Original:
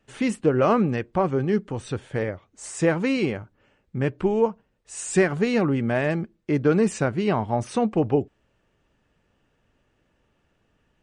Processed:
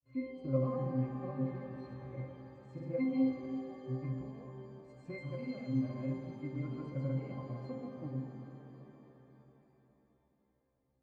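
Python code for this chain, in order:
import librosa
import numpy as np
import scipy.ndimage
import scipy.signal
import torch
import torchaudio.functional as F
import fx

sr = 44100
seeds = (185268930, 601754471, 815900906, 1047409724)

y = fx.granulator(x, sr, seeds[0], grain_ms=100.0, per_s=20.0, spray_ms=100.0, spread_st=0)
y = fx.octave_resonator(y, sr, note='C', decay_s=0.41)
y = fx.rev_shimmer(y, sr, seeds[1], rt60_s=3.6, semitones=7, shimmer_db=-8, drr_db=4.0)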